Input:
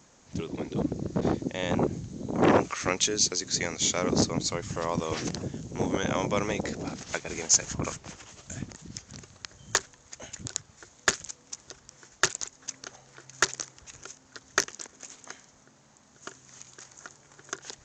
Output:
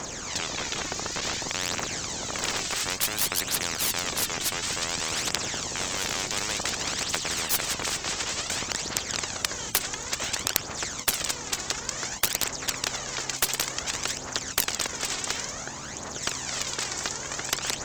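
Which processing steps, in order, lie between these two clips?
one diode to ground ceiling -13.5 dBFS; phaser 0.56 Hz, delay 2.8 ms, feedback 61%; spectral compressor 10:1; gain +2.5 dB

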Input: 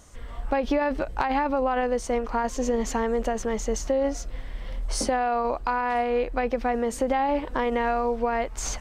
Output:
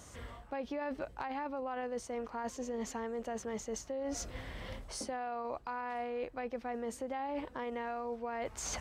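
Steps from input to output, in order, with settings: HPF 60 Hz 24 dB/oct; reverse; compressor 6:1, threshold -37 dBFS, peak gain reduction 16.5 dB; reverse

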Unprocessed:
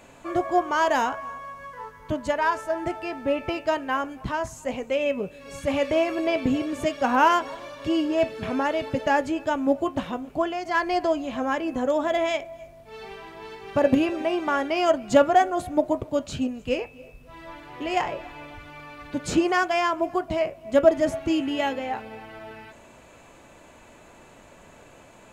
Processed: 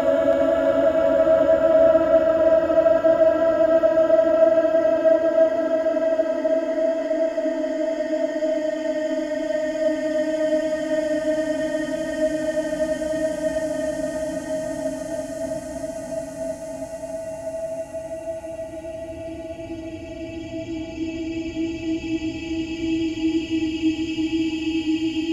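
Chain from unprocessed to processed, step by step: spectral noise reduction 15 dB; Paulstretch 48×, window 0.25 s, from 20.81; tape echo 0.326 s, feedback 83%, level -7 dB, low-pass 5200 Hz; gain -1.5 dB

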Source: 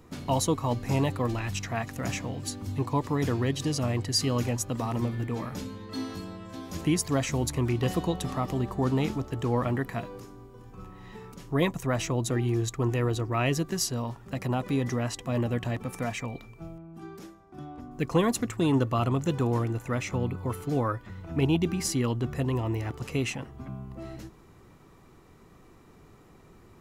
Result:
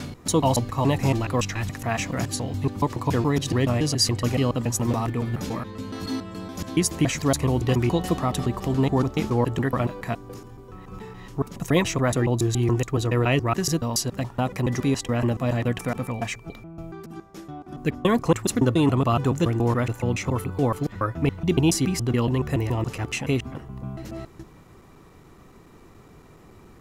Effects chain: slices in reverse order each 0.141 s, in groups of 2; gain +5 dB

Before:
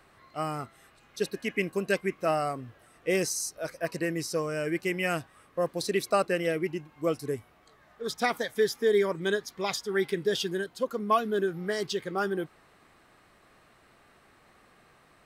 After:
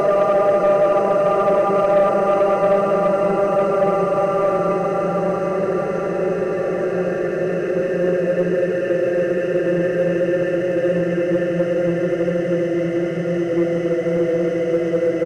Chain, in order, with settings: formant sharpening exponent 1.5; RIAA curve playback; notch 2400 Hz, Q 7.5; diffused feedback echo 1.256 s, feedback 68%, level -9 dB; Paulstretch 46×, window 0.25 s, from 6.13; spring tank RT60 3 s, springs 40 ms, chirp 35 ms, DRR 9 dB; sample leveller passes 1; downsampling 32000 Hz; gain +2 dB

